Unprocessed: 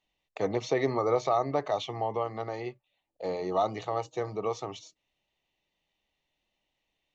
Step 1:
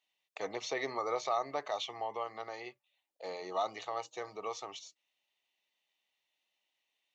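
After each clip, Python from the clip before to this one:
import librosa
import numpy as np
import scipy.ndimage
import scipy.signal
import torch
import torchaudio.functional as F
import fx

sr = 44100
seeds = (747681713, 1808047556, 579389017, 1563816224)

y = fx.highpass(x, sr, hz=1400.0, slope=6)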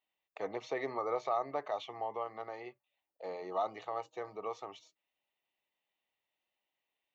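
y = fx.peak_eq(x, sr, hz=6400.0, db=-15.0, octaves=2.3)
y = y * 10.0 ** (1.0 / 20.0)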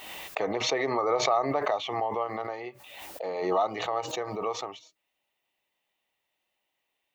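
y = fx.pre_swell(x, sr, db_per_s=44.0)
y = y * 10.0 ** (7.5 / 20.0)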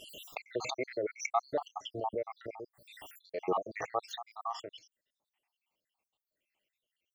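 y = fx.spec_dropout(x, sr, seeds[0], share_pct=76)
y = y * 10.0 ** (-1.5 / 20.0)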